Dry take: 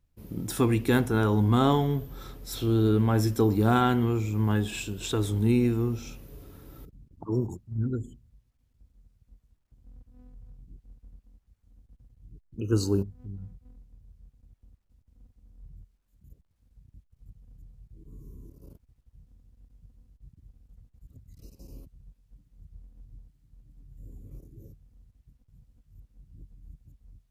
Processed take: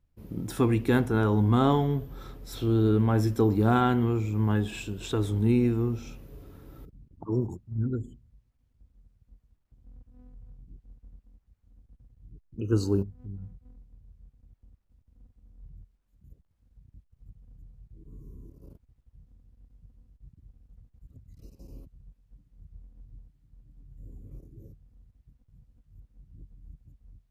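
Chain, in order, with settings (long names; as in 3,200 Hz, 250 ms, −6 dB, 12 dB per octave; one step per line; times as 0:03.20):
high-shelf EQ 3,500 Hz −8 dB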